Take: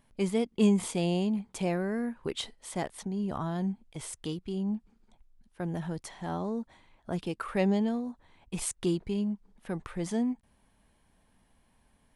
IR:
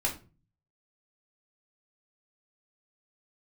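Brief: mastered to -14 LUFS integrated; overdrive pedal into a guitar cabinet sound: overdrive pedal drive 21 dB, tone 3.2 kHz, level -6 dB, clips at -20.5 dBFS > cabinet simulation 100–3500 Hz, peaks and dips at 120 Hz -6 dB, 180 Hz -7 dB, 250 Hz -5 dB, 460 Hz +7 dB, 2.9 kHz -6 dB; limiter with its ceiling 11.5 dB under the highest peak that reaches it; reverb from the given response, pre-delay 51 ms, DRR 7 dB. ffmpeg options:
-filter_complex "[0:a]alimiter=level_in=1.06:limit=0.0631:level=0:latency=1,volume=0.944,asplit=2[s0][s1];[1:a]atrim=start_sample=2205,adelay=51[s2];[s1][s2]afir=irnorm=-1:irlink=0,volume=0.211[s3];[s0][s3]amix=inputs=2:normalize=0,asplit=2[s4][s5];[s5]highpass=f=720:p=1,volume=11.2,asoftclip=type=tanh:threshold=0.0944[s6];[s4][s6]amix=inputs=2:normalize=0,lowpass=f=3200:p=1,volume=0.501,highpass=100,equalizer=f=120:t=q:w=4:g=-6,equalizer=f=180:t=q:w=4:g=-7,equalizer=f=250:t=q:w=4:g=-5,equalizer=f=460:t=q:w=4:g=7,equalizer=f=2900:t=q:w=4:g=-6,lowpass=f=3500:w=0.5412,lowpass=f=3500:w=1.3066,volume=7.5"

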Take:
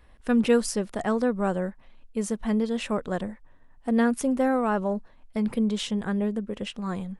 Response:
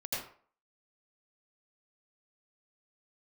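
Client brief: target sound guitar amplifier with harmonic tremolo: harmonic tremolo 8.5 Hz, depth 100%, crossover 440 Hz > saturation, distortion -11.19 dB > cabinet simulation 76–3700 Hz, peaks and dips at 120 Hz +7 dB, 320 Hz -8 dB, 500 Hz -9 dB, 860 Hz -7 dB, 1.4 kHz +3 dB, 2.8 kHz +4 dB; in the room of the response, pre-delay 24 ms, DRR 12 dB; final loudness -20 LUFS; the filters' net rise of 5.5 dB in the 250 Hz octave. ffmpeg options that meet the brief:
-filter_complex "[0:a]equalizer=f=250:t=o:g=7.5,asplit=2[s0][s1];[1:a]atrim=start_sample=2205,adelay=24[s2];[s1][s2]afir=irnorm=-1:irlink=0,volume=0.168[s3];[s0][s3]amix=inputs=2:normalize=0,acrossover=split=440[s4][s5];[s4]aeval=exprs='val(0)*(1-1/2+1/2*cos(2*PI*8.5*n/s))':c=same[s6];[s5]aeval=exprs='val(0)*(1-1/2-1/2*cos(2*PI*8.5*n/s))':c=same[s7];[s6][s7]amix=inputs=2:normalize=0,asoftclip=threshold=0.1,highpass=76,equalizer=f=120:t=q:w=4:g=7,equalizer=f=320:t=q:w=4:g=-8,equalizer=f=500:t=q:w=4:g=-9,equalizer=f=860:t=q:w=4:g=-7,equalizer=f=1400:t=q:w=4:g=3,equalizer=f=2800:t=q:w=4:g=4,lowpass=f=3700:w=0.5412,lowpass=f=3700:w=1.3066,volume=3.55"

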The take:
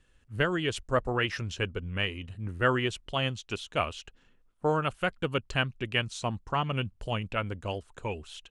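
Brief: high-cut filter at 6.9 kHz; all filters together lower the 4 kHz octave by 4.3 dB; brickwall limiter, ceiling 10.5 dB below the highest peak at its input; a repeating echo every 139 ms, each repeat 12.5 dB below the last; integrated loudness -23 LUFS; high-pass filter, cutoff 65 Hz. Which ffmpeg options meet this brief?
-af "highpass=65,lowpass=6900,equalizer=f=4000:t=o:g=-7,alimiter=limit=0.075:level=0:latency=1,aecho=1:1:139|278|417:0.237|0.0569|0.0137,volume=4.22"

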